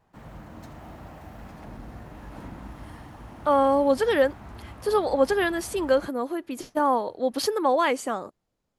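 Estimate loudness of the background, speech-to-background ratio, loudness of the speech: −44.0 LKFS, 19.5 dB, −24.5 LKFS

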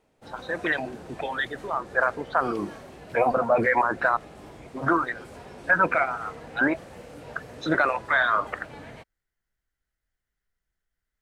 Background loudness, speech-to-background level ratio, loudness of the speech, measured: −44.0 LKFS, 19.0 dB, −25.0 LKFS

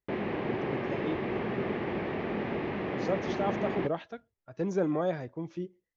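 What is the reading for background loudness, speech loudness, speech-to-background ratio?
−33.5 LKFS, −35.0 LKFS, −1.5 dB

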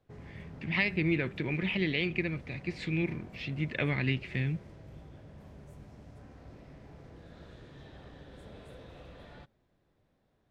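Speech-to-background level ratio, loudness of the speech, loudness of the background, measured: 18.0 dB, −32.0 LKFS, −50.0 LKFS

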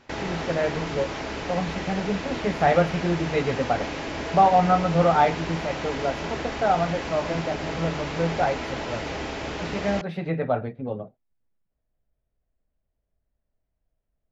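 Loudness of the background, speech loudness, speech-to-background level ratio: −31.5 LKFS, −25.5 LKFS, 6.0 dB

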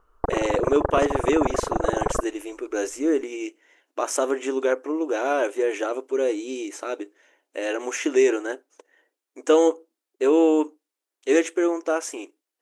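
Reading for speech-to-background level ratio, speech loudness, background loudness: 2.5 dB, −24.5 LKFS, −27.0 LKFS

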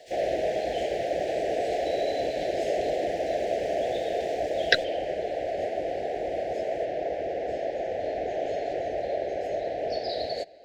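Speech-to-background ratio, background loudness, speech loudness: −7.0 dB, −29.5 LKFS, −36.5 LKFS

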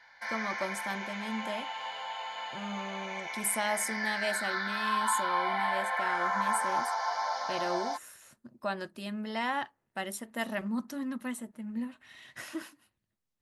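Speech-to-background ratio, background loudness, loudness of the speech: −3.5 dB, −33.0 LKFS, −36.5 LKFS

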